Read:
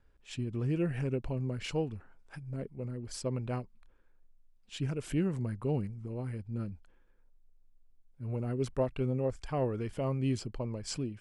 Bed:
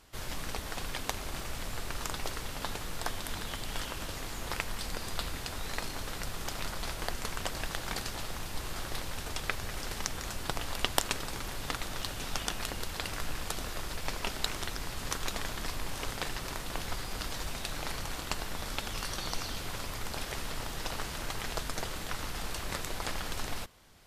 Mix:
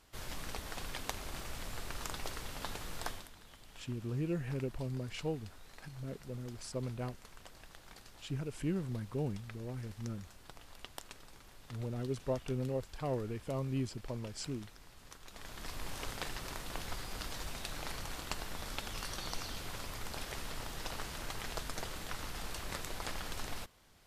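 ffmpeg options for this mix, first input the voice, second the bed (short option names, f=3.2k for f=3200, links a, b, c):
-filter_complex "[0:a]adelay=3500,volume=-4.5dB[a];[1:a]volume=9dB,afade=t=out:st=3.07:d=0.23:silence=0.199526,afade=t=in:st=15.28:d=0.59:silence=0.199526[b];[a][b]amix=inputs=2:normalize=0"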